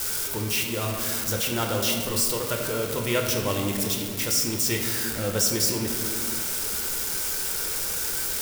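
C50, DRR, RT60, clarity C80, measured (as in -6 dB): 3.5 dB, 0.5 dB, 2.0 s, 5.0 dB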